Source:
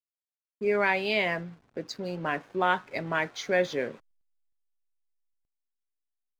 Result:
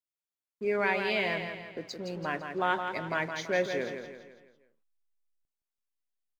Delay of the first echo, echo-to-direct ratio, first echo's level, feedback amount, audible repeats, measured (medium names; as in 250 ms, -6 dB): 167 ms, -6.0 dB, -7.0 dB, 45%, 5